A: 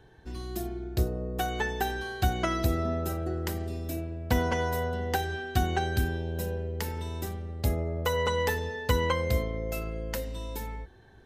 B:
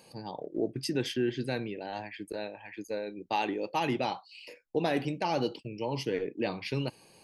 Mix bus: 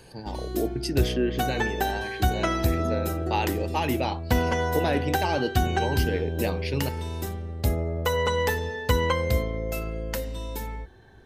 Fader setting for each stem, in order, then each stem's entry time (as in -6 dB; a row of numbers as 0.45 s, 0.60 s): +3.0 dB, +3.0 dB; 0.00 s, 0.00 s